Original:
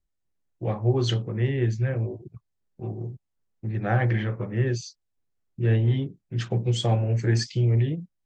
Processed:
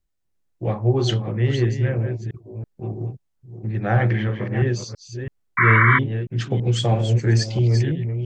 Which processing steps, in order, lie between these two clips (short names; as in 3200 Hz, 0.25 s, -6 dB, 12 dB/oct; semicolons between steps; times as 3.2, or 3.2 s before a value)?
reverse delay 0.33 s, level -8 dB; painted sound noise, 5.57–5.99, 970–2300 Hz -20 dBFS; gain +3.5 dB